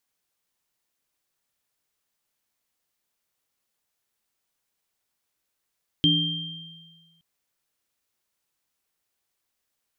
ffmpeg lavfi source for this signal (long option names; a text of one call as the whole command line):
ffmpeg -f lavfi -i "aevalsrc='0.0841*pow(10,-3*t/1.59)*sin(2*PI*165*t)+0.1*pow(10,-3*t/0.82)*sin(2*PI*293*t)+0.141*pow(10,-3*t/1.5)*sin(2*PI*3170*t)':duration=1.17:sample_rate=44100" out.wav